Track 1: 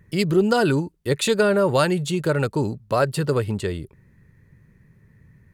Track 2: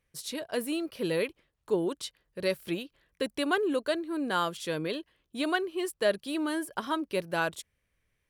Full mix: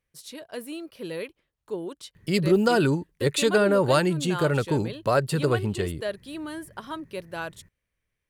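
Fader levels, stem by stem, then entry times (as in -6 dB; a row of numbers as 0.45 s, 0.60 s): -2.0 dB, -4.5 dB; 2.15 s, 0.00 s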